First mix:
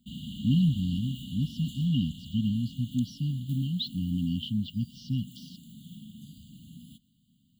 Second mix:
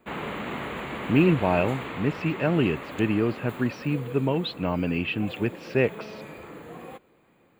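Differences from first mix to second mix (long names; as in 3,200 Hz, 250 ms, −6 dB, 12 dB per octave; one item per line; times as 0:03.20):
speech: entry +0.65 s
master: remove linear-phase brick-wall band-stop 270–2,800 Hz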